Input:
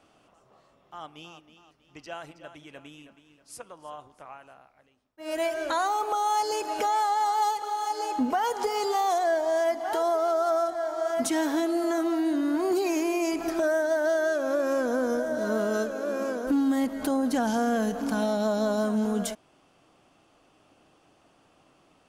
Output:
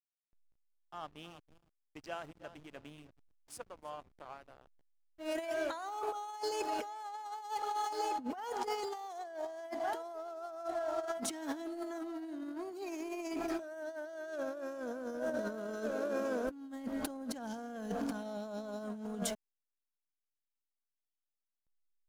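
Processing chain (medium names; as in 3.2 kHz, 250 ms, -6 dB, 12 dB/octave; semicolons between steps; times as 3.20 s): hysteresis with a dead band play -43.5 dBFS; compressor with a negative ratio -30 dBFS, ratio -0.5; trim -8 dB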